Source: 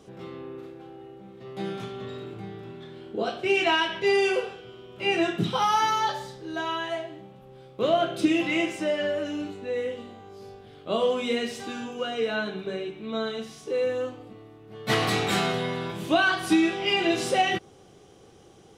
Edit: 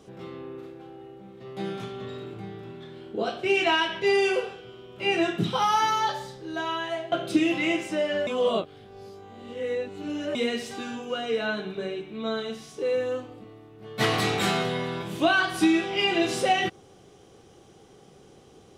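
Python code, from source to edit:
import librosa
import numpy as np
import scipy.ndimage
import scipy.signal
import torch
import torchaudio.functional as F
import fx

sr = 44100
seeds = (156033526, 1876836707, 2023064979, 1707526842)

y = fx.edit(x, sr, fx.cut(start_s=7.12, length_s=0.89),
    fx.reverse_span(start_s=9.16, length_s=2.08), tone=tone)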